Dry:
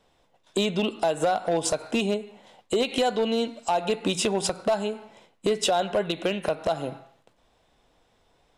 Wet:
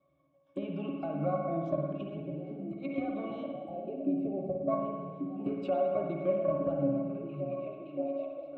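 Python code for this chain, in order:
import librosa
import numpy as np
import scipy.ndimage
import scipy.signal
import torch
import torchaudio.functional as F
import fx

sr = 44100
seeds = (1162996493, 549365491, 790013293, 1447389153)

y = fx.spec_ripple(x, sr, per_octave=1.2, drift_hz=-0.65, depth_db=8)
y = fx.weighting(y, sr, curve='D', at=(3.73, 4.43))
y = fx.echo_stepped(y, sr, ms=569, hz=170.0, octaves=0.7, feedback_pct=70, wet_db=-2.5)
y = fx.spec_box(y, sr, start_s=3.51, length_s=1.17, low_hz=830.0, high_hz=7900.0, gain_db=-25)
y = scipy.signal.sosfilt(scipy.signal.butter(2, 110.0, 'highpass', fs=sr, output='sos'), y)
y = fx.high_shelf(y, sr, hz=5900.0, db=-7.0)
y = fx.over_compress(y, sr, threshold_db=-28.0, ratio=-0.5, at=(1.78, 2.88))
y = fx.octave_resonator(y, sr, note='C#', decay_s=0.15)
y = fx.env_lowpass_down(y, sr, base_hz=2200.0, full_db=-37.0)
y = fx.rev_spring(y, sr, rt60_s=1.4, pass_ms=(54,), chirp_ms=75, drr_db=2.0)
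y = y * librosa.db_to_amplitude(4.5)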